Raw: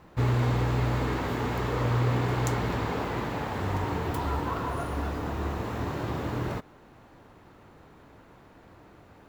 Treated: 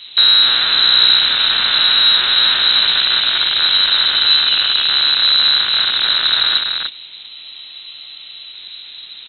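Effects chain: rattling part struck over -33 dBFS, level -20 dBFS; in parallel at 0 dB: compressor, threshold -33 dBFS, peak gain reduction 11.5 dB; on the sum: low shelf 170 Hz +7 dB; loudspeakers at several distances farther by 19 m -12 dB, 100 m -5 dB; soft clip -11 dBFS, distortion -23 dB; inverted band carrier 4000 Hz; spectral freeze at 7.31, 1.23 s; gain +7.5 dB

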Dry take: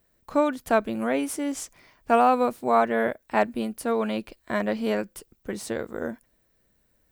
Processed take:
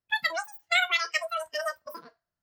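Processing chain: two-slope reverb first 0.76 s, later 2.9 s, from -27 dB, DRR 8.5 dB; wide varispeed 2.93×; spectral noise reduction 19 dB; gain -3.5 dB

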